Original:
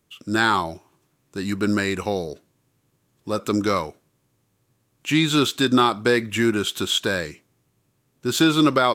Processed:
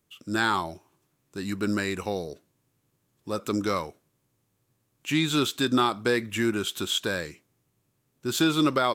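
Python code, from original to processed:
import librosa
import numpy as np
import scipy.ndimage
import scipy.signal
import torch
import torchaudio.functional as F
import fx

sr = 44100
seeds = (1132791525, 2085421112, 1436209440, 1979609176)

y = fx.high_shelf(x, sr, hz=11000.0, db=5.0)
y = F.gain(torch.from_numpy(y), -5.5).numpy()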